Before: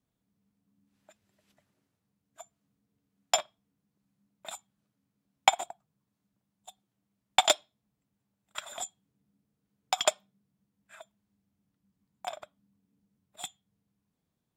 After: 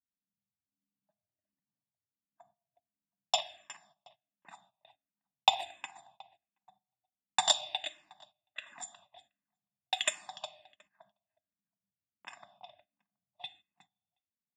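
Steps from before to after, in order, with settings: level-controlled noise filter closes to 770 Hz, open at -30 dBFS; tilt EQ -1.5 dB/octave; comb 1.1 ms, depth 96%; on a send: filtered feedback delay 362 ms, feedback 18%, low-pass 3.7 kHz, level -11.5 dB; on the sum: simulated room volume 370 m³, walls mixed, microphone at 0.32 m; gate -54 dBFS, range -16 dB; frequency weighting D; barber-pole phaser -1.4 Hz; trim -7.5 dB

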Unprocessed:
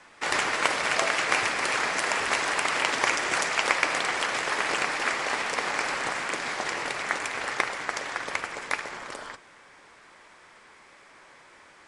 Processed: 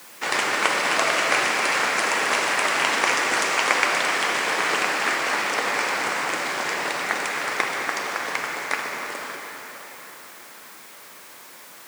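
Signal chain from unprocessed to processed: plate-style reverb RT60 4.6 s, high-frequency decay 0.9×, DRR 1 dB; word length cut 8-bit, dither triangular; high-pass 140 Hz 24 dB/octave; trim +2 dB

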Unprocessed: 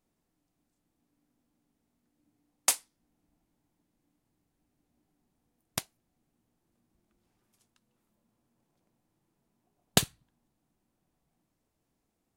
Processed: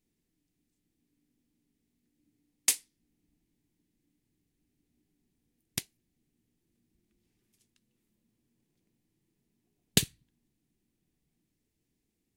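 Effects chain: high-order bell 890 Hz -12.5 dB

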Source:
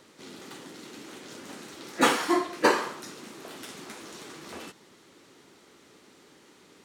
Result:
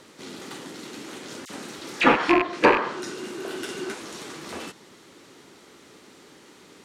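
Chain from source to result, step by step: rattle on loud lows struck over -39 dBFS, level -12 dBFS; 2.92–3.93 s: small resonant body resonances 370/1500/2800 Hz, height 9 dB -> 13 dB; low-pass that closes with the level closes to 2 kHz, closed at -19 dBFS; 1.45–2.15 s: phase dispersion lows, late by 48 ms, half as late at 2 kHz; in parallel at -11 dB: hard clipper -21 dBFS, distortion -9 dB; on the sum: trim +3.5 dB

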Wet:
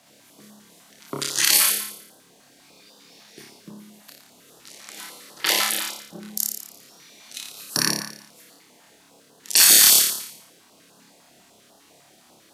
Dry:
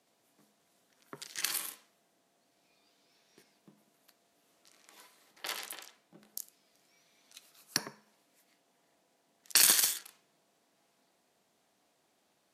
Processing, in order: flutter echo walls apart 4.9 m, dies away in 0.7 s; loudness maximiser +18 dB; step-sequenced notch 10 Hz 400–2200 Hz; trim -1 dB

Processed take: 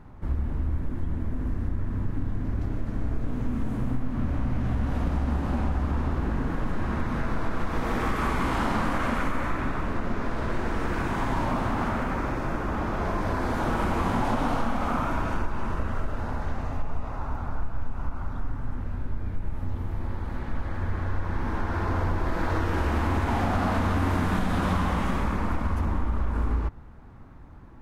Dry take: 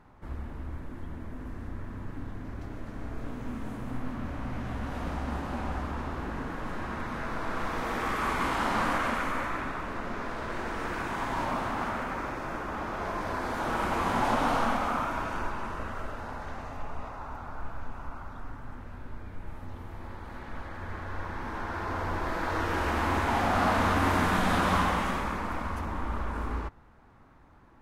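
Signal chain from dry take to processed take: bass shelf 310 Hz +11 dB; compression, threshold -23 dBFS, peak gain reduction 9 dB; trim +2 dB

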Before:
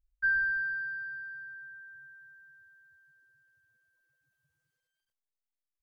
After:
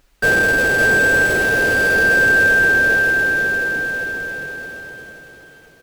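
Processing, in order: overdrive pedal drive 37 dB, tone 2.6 kHz, clips at -21.5 dBFS; comb 7.1 ms, depth 64%; in parallel at -5.5 dB: sample-rate reducer 1.1 kHz, jitter 20%; on the sum: bouncing-ball echo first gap 560 ms, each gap 0.85×, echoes 5; trim +7.5 dB

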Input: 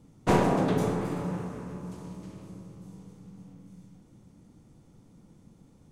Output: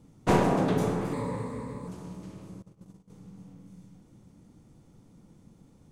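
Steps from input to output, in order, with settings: 1.13–1.88 s: rippled EQ curve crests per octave 0.98, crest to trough 13 dB; 2.62–3.10 s: gate -44 dBFS, range -19 dB

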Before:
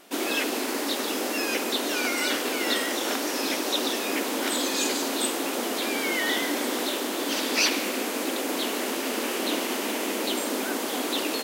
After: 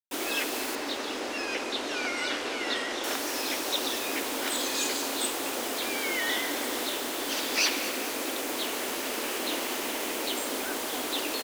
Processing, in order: high-pass 400 Hz 6 dB/octave; word length cut 6-bit, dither none; 0.75–3.04 s: distance through air 80 m; feedback delay 223 ms, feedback 59%, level -15 dB; trim -2.5 dB

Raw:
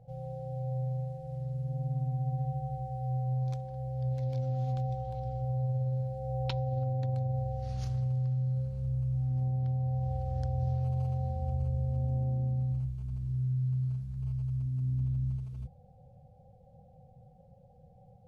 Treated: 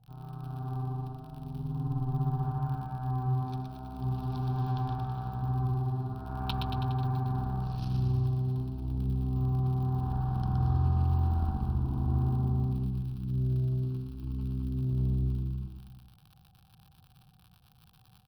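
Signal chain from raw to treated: Chebyshev shaper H 4 -24 dB, 7 -21 dB, 8 -28 dB, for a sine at -20 dBFS; crackle 40 per s -43 dBFS; static phaser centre 2 kHz, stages 6; on a send: bouncing-ball echo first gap 120 ms, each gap 0.9×, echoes 5; on the sum: trim +4 dB

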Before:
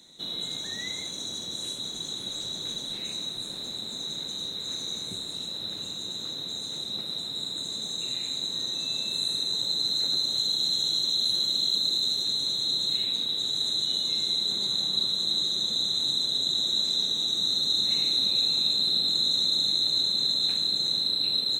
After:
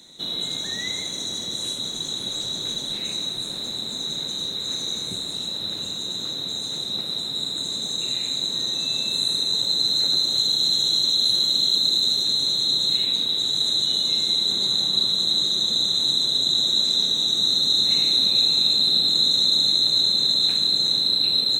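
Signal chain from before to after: plate-style reverb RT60 4.9 s, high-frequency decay 0.6×, DRR 13 dB; trim +5.5 dB

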